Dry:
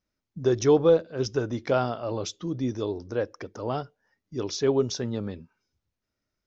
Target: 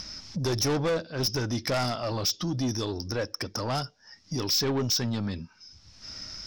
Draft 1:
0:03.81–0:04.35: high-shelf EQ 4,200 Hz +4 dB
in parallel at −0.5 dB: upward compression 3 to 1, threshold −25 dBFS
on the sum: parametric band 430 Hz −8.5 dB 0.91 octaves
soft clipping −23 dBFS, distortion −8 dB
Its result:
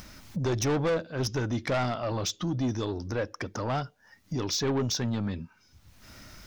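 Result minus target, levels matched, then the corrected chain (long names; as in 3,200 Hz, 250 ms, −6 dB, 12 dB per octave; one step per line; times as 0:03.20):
4,000 Hz band −4.5 dB
0:03.81–0:04.35: high-shelf EQ 4,200 Hz +4 dB
in parallel at −0.5 dB: upward compression 3 to 1, threshold −25 dBFS
on the sum: low-pass with resonance 5,300 Hz, resonance Q 8.4
parametric band 430 Hz −8.5 dB 0.91 octaves
soft clipping −23 dBFS, distortion −4 dB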